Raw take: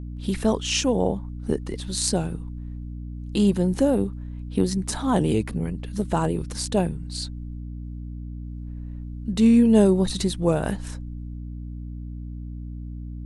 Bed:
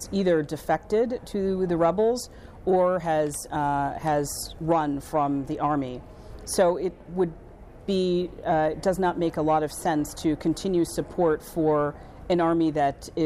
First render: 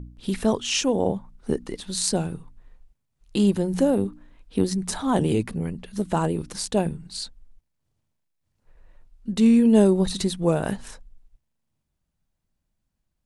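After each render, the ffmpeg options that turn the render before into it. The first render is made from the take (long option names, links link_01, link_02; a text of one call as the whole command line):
ffmpeg -i in.wav -af "bandreject=frequency=60:width_type=h:width=4,bandreject=frequency=120:width_type=h:width=4,bandreject=frequency=180:width_type=h:width=4,bandreject=frequency=240:width_type=h:width=4,bandreject=frequency=300:width_type=h:width=4" out.wav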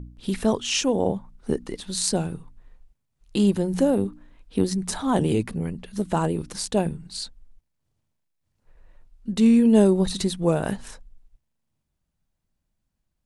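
ffmpeg -i in.wav -af anull out.wav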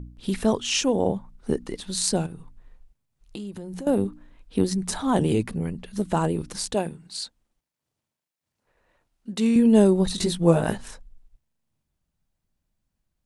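ffmpeg -i in.wav -filter_complex "[0:a]asettb=1/sr,asplit=3[link_01][link_02][link_03];[link_01]atrim=end=2.264[link_04];[link_02]atrim=start=2.26:end=3.87,asetpts=PTS-STARTPTS,afade=type=in:duration=0.004:curve=qsin,afade=type=out:start_time=1.606:duration=0.004:curve=qsin,acompressor=threshold=-33dB:ratio=6:attack=3.2:release=140:knee=1:detection=peak[link_05];[link_03]atrim=start=3.866[link_06];[link_04][link_05]acrossfade=duration=0.004:curve1=hsin:curve2=qsin[link_07];[link_07][link_06]acrossfade=duration=0.004:curve1=qsin:curve2=hsin,asettb=1/sr,asplit=3[link_08][link_09][link_10];[link_08]atrim=end=6.744[link_11];[link_09]atrim=start=6.74:end=9.56,asetpts=PTS-STARTPTS,afade=type=in:duration=0.004:curve=qsin,afade=type=out:start_time=2.816:duration=0.004:curve=qsin,highpass=frequency=340:poles=1[link_12];[link_10]atrim=start=9.556[link_13];[link_11][link_12]acrossfade=duration=0.004:curve1=hsin:curve2=qsin[link_14];[link_14][link_13]acrossfade=duration=0.004:curve1=qsin:curve2=hsin,asettb=1/sr,asplit=3[link_15][link_16][link_17];[link_15]atrim=end=10.164[link_18];[link_16]atrim=start=10.16:end=10.78,asetpts=PTS-STARTPTS,afade=type=in:duration=0.004:curve=qsin,afade=type=out:start_time=0.616:duration=0.004:curve=qsin,asplit=2[link_19][link_20];[link_20]adelay=18,volume=-2.5dB[link_21];[link_19][link_21]amix=inputs=2:normalize=0,atrim=end_sample=27342[link_22];[link_17]atrim=start=10.776[link_23];[link_18][link_22]acrossfade=duration=0.004:curve1=hsin:curve2=qsin[link_24];[link_24][link_23]acrossfade=duration=0.004:curve1=qsin:curve2=hsin" out.wav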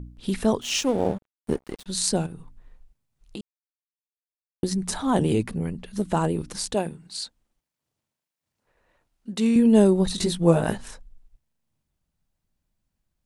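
ffmpeg -i in.wav -filter_complex "[0:a]asettb=1/sr,asplit=3[link_01][link_02][link_03];[link_01]atrim=end=0.614[link_04];[link_02]atrim=start=0.61:end=1.86,asetpts=PTS-STARTPTS,afade=type=in:duration=0.004:curve=qsin,afade=type=out:start_time=1.246:duration=0.004:curve=qsin,aeval=exprs='sgn(val(0))*max(abs(val(0))-0.0126,0)':channel_layout=same[link_05];[link_03]atrim=start=1.856[link_06];[link_04][link_05]acrossfade=duration=0.004:curve1=hsin:curve2=qsin[link_07];[link_07][link_06]acrossfade=duration=0.004:curve1=qsin:curve2=hsin,asplit=3[link_08][link_09][link_10];[link_08]atrim=end=3.41,asetpts=PTS-STARTPTS,afade=type=out:start_time=3.406:duration=0.004:curve=hsin[link_11];[link_09]atrim=start=3.41:end=4.63,asetpts=PTS-STARTPTS,volume=0[link_12];[link_10]atrim=start=4.63,asetpts=PTS-STARTPTS,afade=type=in:duration=0.004:curve=hsin[link_13];[link_11][link_12][link_13]concat=n=3:v=0:a=1" out.wav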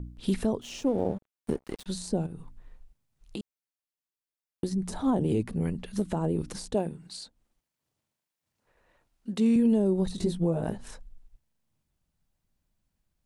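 ffmpeg -i in.wav -filter_complex "[0:a]acrossover=split=780[link_01][link_02];[link_02]acompressor=threshold=-41dB:ratio=5[link_03];[link_01][link_03]amix=inputs=2:normalize=0,alimiter=limit=-16.5dB:level=0:latency=1:release=331" out.wav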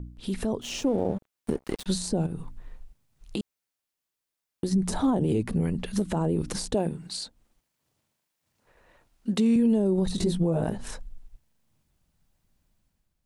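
ffmpeg -i in.wav -af "alimiter=limit=-23dB:level=0:latency=1:release=107,dynaudnorm=framelen=130:gausssize=7:maxgain=7dB" out.wav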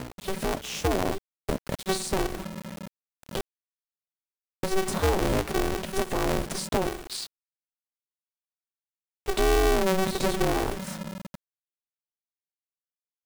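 ffmpeg -i in.wav -af "acrusher=bits=6:mix=0:aa=0.000001,aeval=exprs='val(0)*sgn(sin(2*PI*190*n/s))':channel_layout=same" out.wav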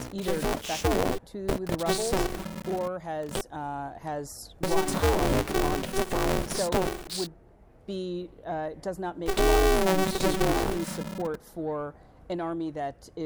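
ffmpeg -i in.wav -i bed.wav -filter_complex "[1:a]volume=-9.5dB[link_01];[0:a][link_01]amix=inputs=2:normalize=0" out.wav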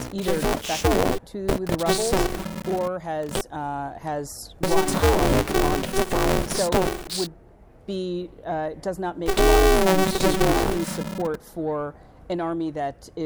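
ffmpeg -i in.wav -af "volume=5dB" out.wav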